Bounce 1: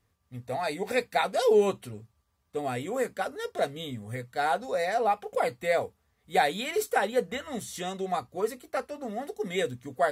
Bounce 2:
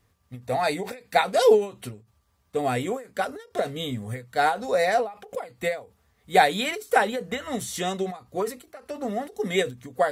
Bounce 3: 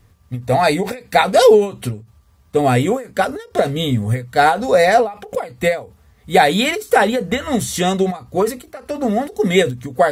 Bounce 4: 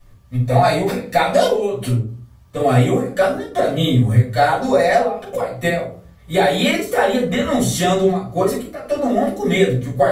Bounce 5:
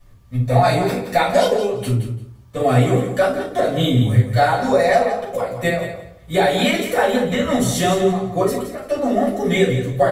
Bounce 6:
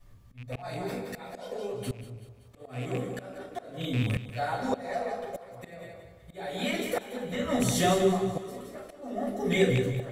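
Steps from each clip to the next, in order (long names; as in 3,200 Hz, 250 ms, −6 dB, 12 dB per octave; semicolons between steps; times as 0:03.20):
every ending faded ahead of time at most 160 dB per second; level +6.5 dB
low-shelf EQ 200 Hz +8.5 dB; boost into a limiter +10 dB; level −1 dB
downward compressor, threshold −14 dBFS, peak gain reduction 8.5 dB; rectangular room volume 260 cubic metres, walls furnished, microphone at 6.1 metres; level −8 dB
repeating echo 171 ms, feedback 19%, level −10 dB; level −1 dB
loose part that buzzes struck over −15 dBFS, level −13 dBFS; volume swells 792 ms; echo with a time of its own for lows and highs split 330 Hz, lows 125 ms, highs 190 ms, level −14 dB; level −6.5 dB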